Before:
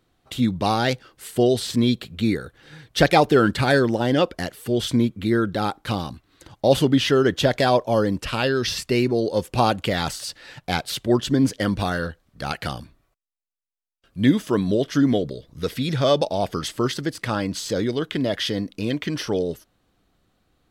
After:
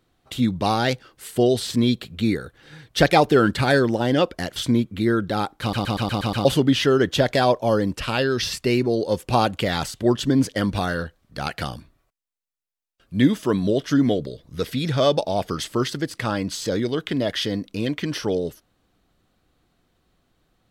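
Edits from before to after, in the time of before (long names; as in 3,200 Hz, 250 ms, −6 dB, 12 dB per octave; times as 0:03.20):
0:04.56–0:04.81: remove
0:05.86: stutter in place 0.12 s, 7 plays
0:10.19–0:10.98: remove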